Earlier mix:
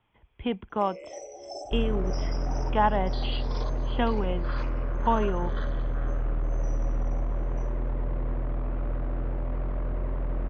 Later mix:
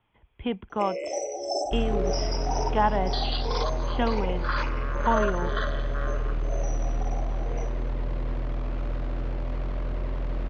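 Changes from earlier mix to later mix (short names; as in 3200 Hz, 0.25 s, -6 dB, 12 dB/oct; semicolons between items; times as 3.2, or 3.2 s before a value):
first sound +10.5 dB; second sound: remove LPF 1700 Hz 12 dB/oct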